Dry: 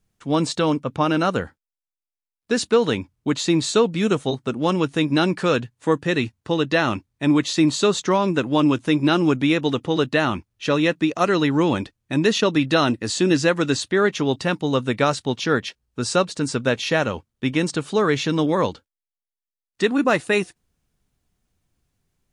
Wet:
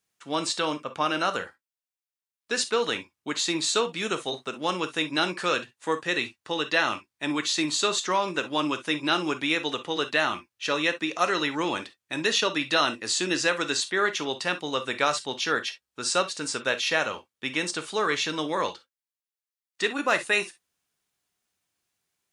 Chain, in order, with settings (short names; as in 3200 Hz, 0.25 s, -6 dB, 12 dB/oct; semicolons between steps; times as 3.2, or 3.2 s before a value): HPF 1200 Hz 6 dB/oct; non-linear reverb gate 80 ms flat, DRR 9 dB